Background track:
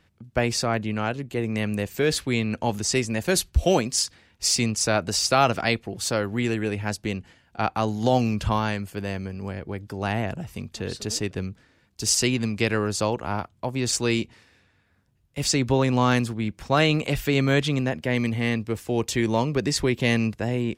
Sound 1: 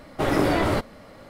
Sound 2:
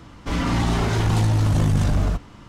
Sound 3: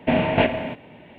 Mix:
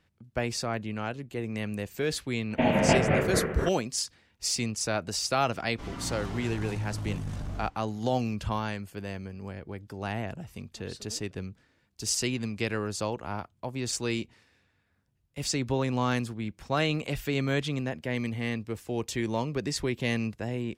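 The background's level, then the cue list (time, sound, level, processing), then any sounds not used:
background track -7 dB
2.51 s: add 3 -5 dB + ever faster or slower copies 146 ms, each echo -3 st, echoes 3
5.52 s: add 2 -16 dB
not used: 1

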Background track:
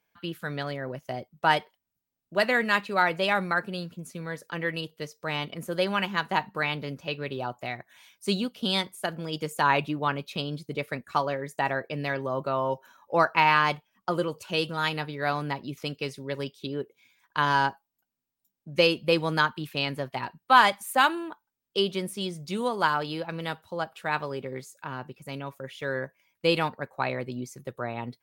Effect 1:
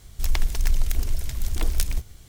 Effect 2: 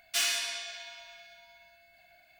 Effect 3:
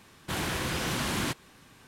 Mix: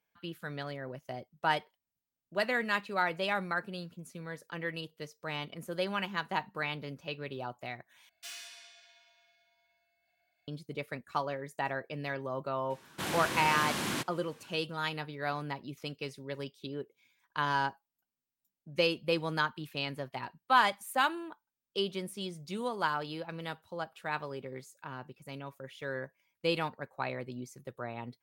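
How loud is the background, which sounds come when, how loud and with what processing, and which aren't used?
background track -7 dB
8.09 s: replace with 2 -16.5 dB + bass shelf 63 Hz -9 dB
12.70 s: add 3 -3 dB + high-pass 140 Hz
not used: 1

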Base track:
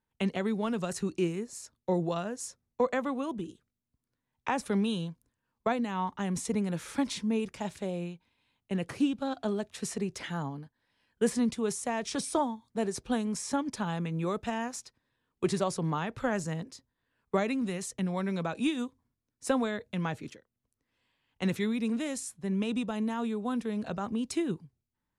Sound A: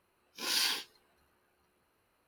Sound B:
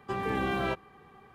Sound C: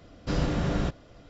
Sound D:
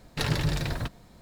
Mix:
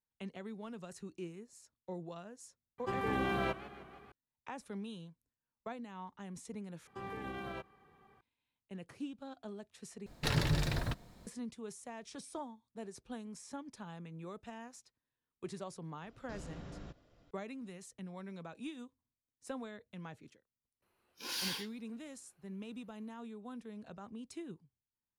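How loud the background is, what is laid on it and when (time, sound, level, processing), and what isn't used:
base track -15 dB
2.78 s: add B -4 dB + modulated delay 156 ms, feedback 60%, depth 155 cents, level -16.5 dB
6.87 s: replace with B -10 dB + peak limiter -24 dBFS
10.06 s: replace with D -4.5 dB
16.02 s: add C -15 dB + compression 2:1, threshold -33 dBFS
20.82 s: add A -4.5 dB + saturation -28 dBFS

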